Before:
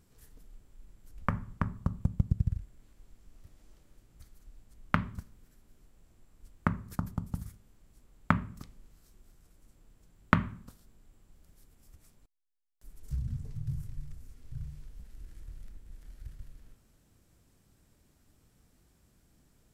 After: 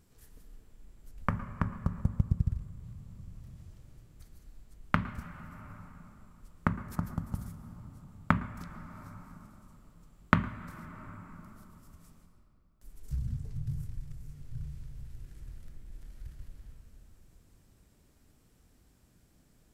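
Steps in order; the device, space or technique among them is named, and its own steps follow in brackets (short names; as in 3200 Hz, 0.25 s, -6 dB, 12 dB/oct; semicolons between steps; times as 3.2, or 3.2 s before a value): compressed reverb return (on a send at -4.5 dB: reverb RT60 2.8 s, pre-delay 0.108 s + compressor, threshold -38 dBFS, peak gain reduction 13.5 dB)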